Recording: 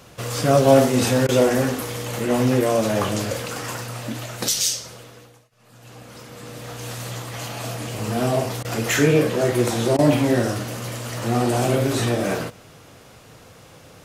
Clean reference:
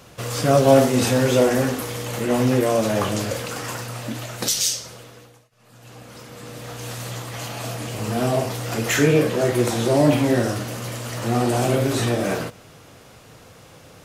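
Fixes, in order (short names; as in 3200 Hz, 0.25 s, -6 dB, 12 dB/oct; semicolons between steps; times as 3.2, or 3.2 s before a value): interpolate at 1.27/8.63/9.97, 16 ms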